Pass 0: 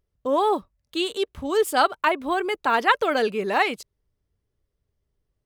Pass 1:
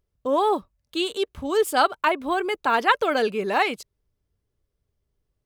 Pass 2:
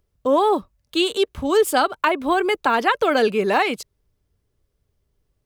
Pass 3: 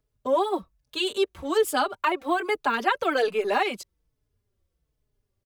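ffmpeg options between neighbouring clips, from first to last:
-af "bandreject=f=1.9k:w=23"
-filter_complex "[0:a]acrossover=split=350[a][b];[b]acompressor=threshold=-21dB:ratio=6[c];[a][c]amix=inputs=2:normalize=0,volume=6dB"
-filter_complex "[0:a]acrossover=split=260[a][b];[a]asoftclip=type=hard:threshold=-38.5dB[c];[c][b]amix=inputs=2:normalize=0,asplit=2[d][e];[e]adelay=4.2,afreqshift=-1.2[f];[d][f]amix=inputs=2:normalize=1,volume=-2.5dB"

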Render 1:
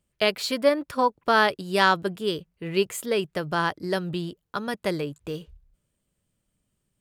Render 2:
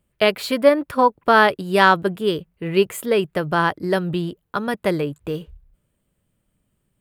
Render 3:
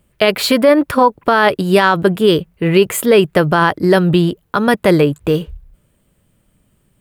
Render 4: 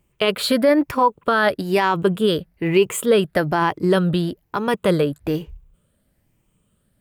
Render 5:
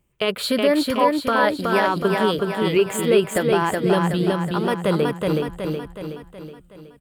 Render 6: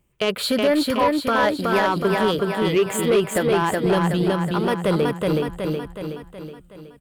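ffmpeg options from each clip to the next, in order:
-af "equalizer=f=5.8k:w=0.91:g=-9.5,volume=6.5dB"
-af "alimiter=level_in=12.5dB:limit=-1dB:release=50:level=0:latency=1,volume=-1dB"
-af "afftfilt=real='re*pow(10,7/40*sin(2*PI*(0.72*log(max(b,1)*sr/1024/100)/log(2)-(1.1)*(pts-256)/sr)))':imag='im*pow(10,7/40*sin(2*PI*(0.72*log(max(b,1)*sr/1024/100)/log(2)-(1.1)*(pts-256)/sr)))':win_size=1024:overlap=0.75,volume=-7dB"
-af "aecho=1:1:371|742|1113|1484|1855|2226|2597:0.708|0.368|0.191|0.0995|0.0518|0.0269|0.014,volume=-3dB"
-af "asoftclip=type=tanh:threshold=-13dB,volume=1.5dB"

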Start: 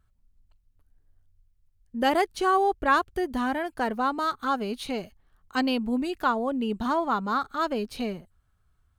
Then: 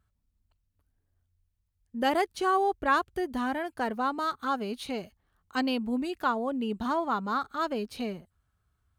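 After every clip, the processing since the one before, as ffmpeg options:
-af "highpass=48,volume=-3dB"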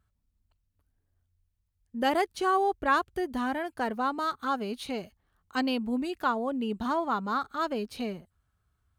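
-af anull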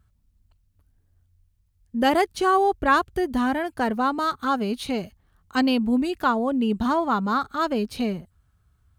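-af "bass=f=250:g=6,treble=f=4k:g=1,volume=5.5dB"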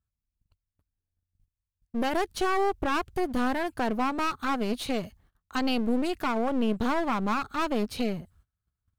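-af "agate=range=-22dB:threshold=-57dB:ratio=16:detection=peak,alimiter=limit=-16dB:level=0:latency=1:release=104,aeval=exprs='clip(val(0),-1,0.0188)':c=same"

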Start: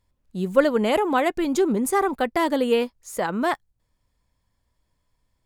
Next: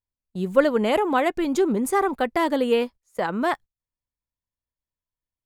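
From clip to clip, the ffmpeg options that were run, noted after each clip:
-af "bass=f=250:g=-1,treble=f=4k:g=-3,agate=range=-22dB:threshold=-37dB:ratio=16:detection=peak"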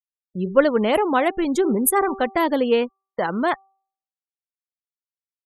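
-af "afftfilt=real='re*gte(hypot(re,im),0.0178)':imag='im*gte(hypot(re,im),0.0178)':win_size=1024:overlap=0.75,bandreject=f=388.1:t=h:w=4,bandreject=f=776.2:t=h:w=4,bandreject=f=1.1643k:t=h:w=4,aexciter=amount=7.9:drive=4.4:freq=9.9k,volume=2dB"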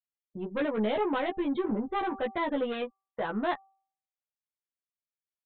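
-filter_complex "[0:a]aresample=8000,asoftclip=type=tanh:threshold=-18.5dB,aresample=44100,asplit=2[a][b];[b]adelay=14,volume=-2.5dB[c];[a][c]amix=inputs=2:normalize=0,volume=-8dB"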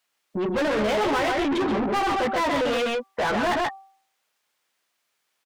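-filter_complex "[0:a]asplit=2[a][b];[b]asoftclip=type=hard:threshold=-33.5dB,volume=-11dB[c];[a][c]amix=inputs=2:normalize=0,aecho=1:1:131:0.501,asplit=2[d][e];[e]highpass=f=720:p=1,volume=30dB,asoftclip=type=tanh:threshold=-17.5dB[f];[d][f]amix=inputs=2:normalize=0,lowpass=f=3.7k:p=1,volume=-6dB"

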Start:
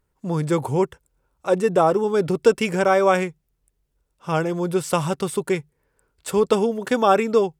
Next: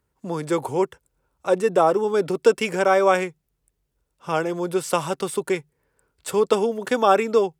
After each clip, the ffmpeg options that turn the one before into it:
-filter_complex "[0:a]highpass=49,acrossover=split=240|2100[a][b][c];[a]acompressor=threshold=-39dB:ratio=6[d];[d][b][c]amix=inputs=3:normalize=0"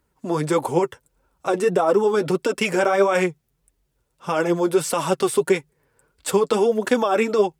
-af "alimiter=limit=-15dB:level=0:latency=1:release=26,flanger=delay=2.9:depth=6.2:regen=27:speed=1.6:shape=triangular,volume=8.5dB"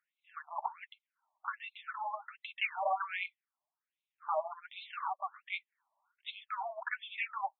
-af "afftfilt=real='re*between(b*sr/1024,810*pow(3000/810,0.5+0.5*sin(2*PI*1.3*pts/sr))/1.41,810*pow(3000/810,0.5+0.5*sin(2*PI*1.3*pts/sr))*1.41)':imag='im*between(b*sr/1024,810*pow(3000/810,0.5+0.5*sin(2*PI*1.3*pts/sr))/1.41,810*pow(3000/810,0.5+0.5*sin(2*PI*1.3*pts/sr))*1.41)':win_size=1024:overlap=0.75,volume=-7.5dB"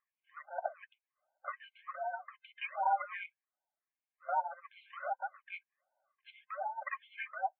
-af "afftfilt=real='real(if(between(b,1,1008),(2*floor((b-1)/24)+1)*24-b,b),0)':imag='imag(if(between(b,1,1008),(2*floor((b-1)/24)+1)*24-b,b),0)*if(between(b,1,1008),-1,1)':win_size=2048:overlap=0.75,highpass=440,equalizer=f=560:t=q:w=4:g=-4,equalizer=f=810:t=q:w=4:g=3,equalizer=f=1.4k:t=q:w=4:g=-7,lowpass=f=2k:w=0.5412,lowpass=f=2k:w=1.3066,volume=1dB"

